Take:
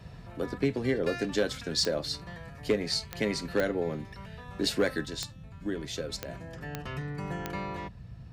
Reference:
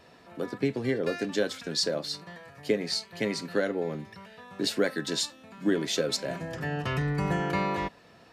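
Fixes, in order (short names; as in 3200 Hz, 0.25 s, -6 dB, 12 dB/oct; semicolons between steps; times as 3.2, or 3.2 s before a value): clip repair -17.5 dBFS; de-click; noise print and reduce 7 dB; gain correction +8 dB, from 5.05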